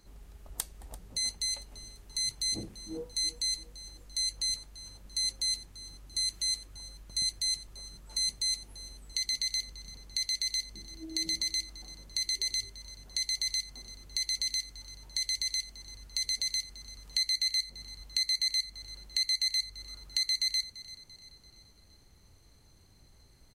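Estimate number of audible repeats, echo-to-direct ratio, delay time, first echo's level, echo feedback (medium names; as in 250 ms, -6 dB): 3, -16.0 dB, 340 ms, -17.0 dB, 49%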